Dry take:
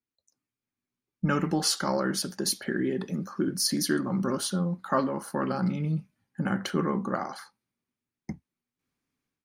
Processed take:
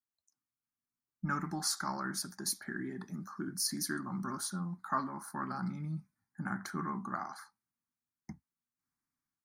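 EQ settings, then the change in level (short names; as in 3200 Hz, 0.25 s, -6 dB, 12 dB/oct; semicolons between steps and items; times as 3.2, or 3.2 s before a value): low shelf 300 Hz -6 dB; fixed phaser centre 1200 Hz, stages 4; -4.0 dB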